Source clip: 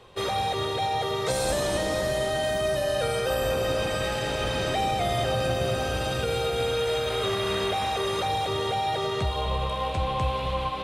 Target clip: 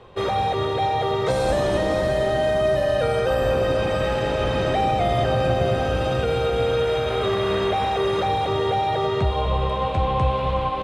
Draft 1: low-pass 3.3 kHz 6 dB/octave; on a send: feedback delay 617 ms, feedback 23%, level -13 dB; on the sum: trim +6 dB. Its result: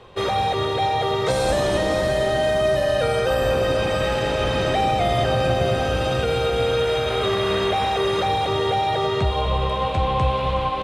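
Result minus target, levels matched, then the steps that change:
4 kHz band +3.5 dB
change: low-pass 1.6 kHz 6 dB/octave

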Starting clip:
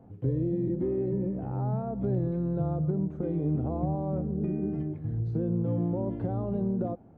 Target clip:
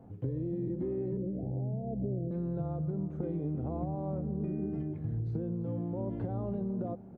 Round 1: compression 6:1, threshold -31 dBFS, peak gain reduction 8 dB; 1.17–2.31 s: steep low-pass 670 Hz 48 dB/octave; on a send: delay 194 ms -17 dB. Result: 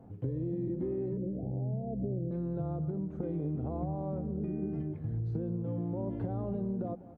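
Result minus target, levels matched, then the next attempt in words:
echo 141 ms early
compression 6:1, threshold -31 dBFS, peak gain reduction 8 dB; 1.17–2.31 s: steep low-pass 670 Hz 48 dB/octave; on a send: delay 335 ms -17 dB

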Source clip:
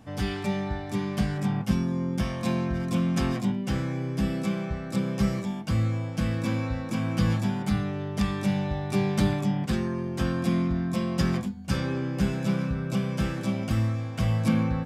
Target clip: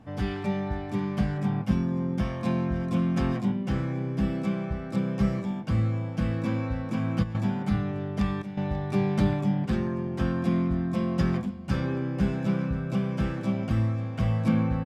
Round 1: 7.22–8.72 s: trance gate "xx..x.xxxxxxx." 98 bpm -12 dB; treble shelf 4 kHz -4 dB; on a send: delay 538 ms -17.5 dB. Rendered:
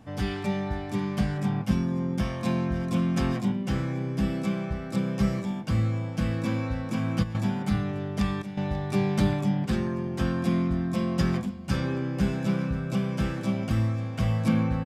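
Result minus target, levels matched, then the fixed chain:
8 kHz band +7.5 dB
7.22–8.72 s: trance gate "xx..x.xxxxxxx." 98 bpm -12 dB; treble shelf 4 kHz -14 dB; on a send: delay 538 ms -17.5 dB

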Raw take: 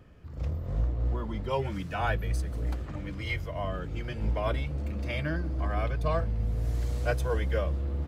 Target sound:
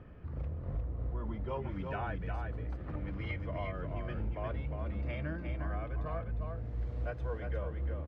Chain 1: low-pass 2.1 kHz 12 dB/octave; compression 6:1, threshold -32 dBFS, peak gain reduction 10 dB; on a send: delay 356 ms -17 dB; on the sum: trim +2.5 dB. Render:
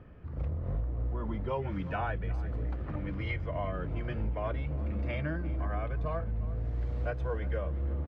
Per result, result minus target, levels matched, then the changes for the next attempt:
echo-to-direct -12 dB; compression: peak gain reduction -5 dB
change: delay 356 ms -5 dB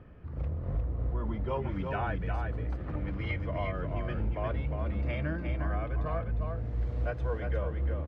compression: peak gain reduction -5 dB
change: compression 6:1, threshold -38 dBFS, peak gain reduction 15 dB

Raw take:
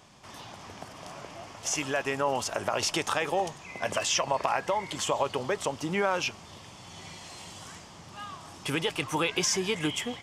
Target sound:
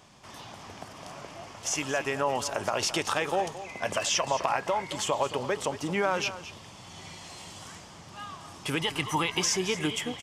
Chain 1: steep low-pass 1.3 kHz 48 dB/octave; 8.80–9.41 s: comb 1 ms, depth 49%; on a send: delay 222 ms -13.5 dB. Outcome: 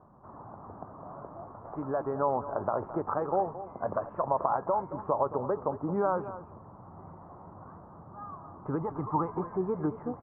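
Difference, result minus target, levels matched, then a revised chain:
1 kHz band +2.5 dB
8.80–9.41 s: comb 1 ms, depth 49%; on a send: delay 222 ms -13.5 dB

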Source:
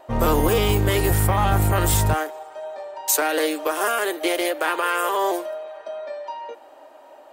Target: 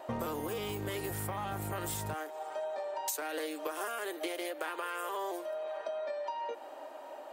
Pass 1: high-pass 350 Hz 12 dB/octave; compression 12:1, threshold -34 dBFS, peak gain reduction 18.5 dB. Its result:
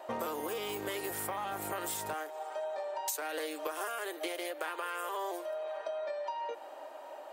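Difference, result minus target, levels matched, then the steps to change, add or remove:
125 Hz band -12.5 dB
change: high-pass 130 Hz 12 dB/octave

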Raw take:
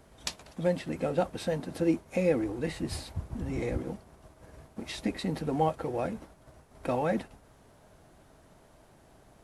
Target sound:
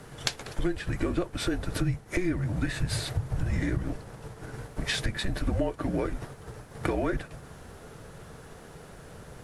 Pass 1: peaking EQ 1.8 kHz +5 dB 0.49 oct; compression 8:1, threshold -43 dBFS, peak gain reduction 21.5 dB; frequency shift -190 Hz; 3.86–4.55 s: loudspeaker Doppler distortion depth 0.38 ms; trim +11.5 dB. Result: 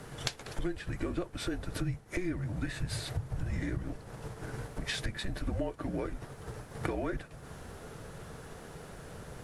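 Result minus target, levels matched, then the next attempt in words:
compression: peak gain reduction +6 dB
peaking EQ 1.8 kHz +5 dB 0.49 oct; compression 8:1, threshold -36 dBFS, peak gain reduction 15.5 dB; frequency shift -190 Hz; 3.86–4.55 s: loudspeaker Doppler distortion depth 0.38 ms; trim +11.5 dB

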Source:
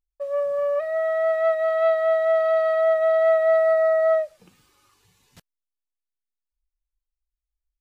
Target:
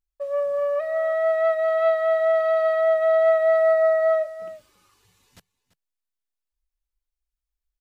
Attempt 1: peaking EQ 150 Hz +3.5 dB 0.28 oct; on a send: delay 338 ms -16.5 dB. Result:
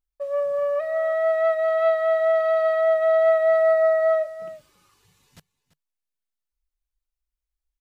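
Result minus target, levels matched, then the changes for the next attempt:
125 Hz band +3.0 dB
change: peaking EQ 150 Hz -8 dB 0.28 oct

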